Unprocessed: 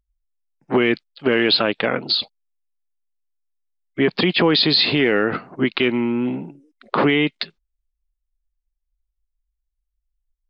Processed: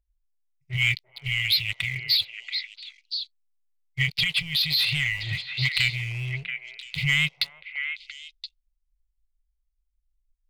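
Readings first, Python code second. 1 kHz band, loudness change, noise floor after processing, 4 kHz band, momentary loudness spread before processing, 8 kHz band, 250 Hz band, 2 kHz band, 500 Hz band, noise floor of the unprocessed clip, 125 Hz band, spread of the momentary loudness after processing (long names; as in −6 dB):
−24.0 dB, −6.0 dB, −76 dBFS, −2.5 dB, 11 LU, can't be measured, −21.5 dB, −1.5 dB, −36.0 dB, −79 dBFS, 0.0 dB, 17 LU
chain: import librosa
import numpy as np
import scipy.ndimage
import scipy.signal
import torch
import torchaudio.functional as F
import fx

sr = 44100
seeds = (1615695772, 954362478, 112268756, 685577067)

p1 = fx.brickwall_bandstop(x, sr, low_hz=150.0, high_hz=1900.0)
p2 = fx.low_shelf(p1, sr, hz=72.0, db=10.0)
p3 = fx.leveller(p2, sr, passes=2)
p4 = fx.vibrato(p3, sr, rate_hz=3.9, depth_cents=36.0)
p5 = p4 + fx.echo_stepped(p4, sr, ms=341, hz=690.0, octaves=1.4, feedback_pct=70, wet_db=-6.5, dry=0)
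p6 = fx.rider(p5, sr, range_db=4, speed_s=0.5)
y = p6 * 10.0 ** (-6.5 / 20.0)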